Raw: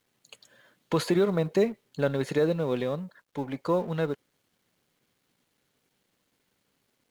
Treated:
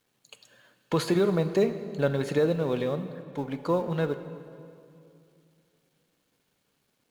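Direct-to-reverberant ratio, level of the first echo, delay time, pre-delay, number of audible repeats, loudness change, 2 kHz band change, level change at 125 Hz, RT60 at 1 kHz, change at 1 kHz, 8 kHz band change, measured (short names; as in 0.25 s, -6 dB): 10.0 dB, none, none, 3 ms, none, +0.5 dB, 0.0 dB, +1.5 dB, 2.4 s, +0.5 dB, n/a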